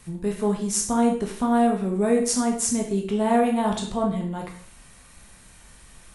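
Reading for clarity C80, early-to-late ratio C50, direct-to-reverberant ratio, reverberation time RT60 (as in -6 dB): 11.0 dB, 6.5 dB, 0.5 dB, 0.50 s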